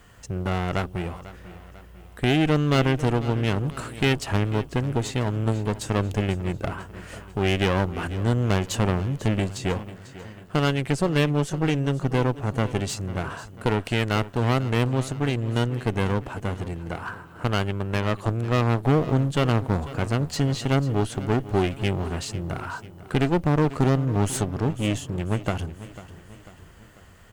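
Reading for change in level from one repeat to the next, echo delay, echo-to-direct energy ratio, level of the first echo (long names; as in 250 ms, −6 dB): −6.0 dB, 495 ms, −15.0 dB, −16.0 dB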